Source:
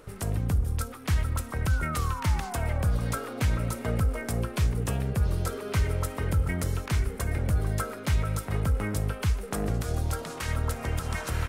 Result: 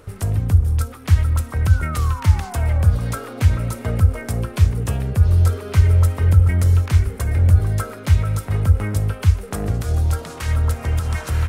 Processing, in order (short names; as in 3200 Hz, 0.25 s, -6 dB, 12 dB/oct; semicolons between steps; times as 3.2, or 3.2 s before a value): bell 88 Hz +14 dB 0.45 oct; gain +3.5 dB